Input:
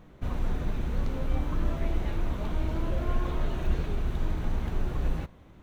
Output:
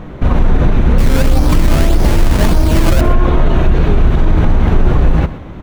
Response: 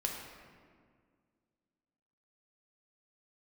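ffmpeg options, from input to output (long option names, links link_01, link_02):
-filter_complex "[0:a]lowpass=frequency=2400:poles=1,asettb=1/sr,asplit=3[link_01][link_02][link_03];[link_01]atrim=end=0.984[link_04];[link_02]atrim=start=0.98:end=3.01,asetpts=PTS-STARTPTS,afade=type=in:duration=0.004:curve=qsin,afade=type=out:start_time=2.026:duration=0.004:curve=qsin,acrusher=samples=16:mix=1:aa=0.000001:lfo=1:lforange=16:lforate=1.7[link_05];[link_03]atrim=start=3.006[link_06];[link_04][link_05]acrossfade=duration=0.004:curve1=hsin:curve2=qsin[link_07];[link_07][link_06]acrossfade=duration=0.004:curve1=qsin:curve2=hsin,aecho=1:1:124:0.15,alimiter=level_in=24.5dB:limit=-1dB:release=50:level=0:latency=1,volume=-1dB"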